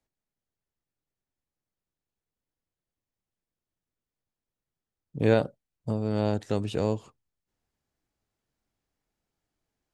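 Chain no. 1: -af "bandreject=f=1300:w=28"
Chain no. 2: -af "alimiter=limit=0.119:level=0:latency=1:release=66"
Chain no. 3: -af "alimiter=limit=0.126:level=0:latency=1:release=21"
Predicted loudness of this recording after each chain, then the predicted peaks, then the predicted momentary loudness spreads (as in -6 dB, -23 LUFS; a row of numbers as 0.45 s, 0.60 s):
-28.0 LUFS, -33.0 LUFS, -32.0 LUFS; -8.0 dBFS, -18.5 dBFS, -18.0 dBFS; 13 LU, 11 LU, 10 LU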